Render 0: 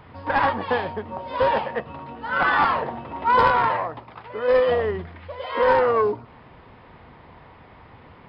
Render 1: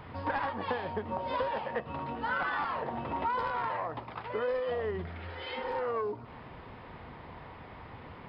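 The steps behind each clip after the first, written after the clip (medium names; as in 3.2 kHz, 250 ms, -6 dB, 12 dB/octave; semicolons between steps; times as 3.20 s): compression 16:1, threshold -29 dBFS, peak gain reduction 17 dB; spectral replace 5.10–5.73 s, 260–2000 Hz both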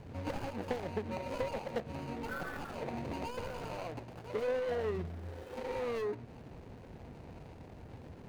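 median filter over 41 samples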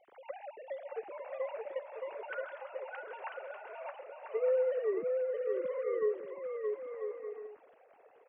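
formants replaced by sine waves; on a send: bouncing-ball echo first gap 620 ms, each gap 0.6×, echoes 5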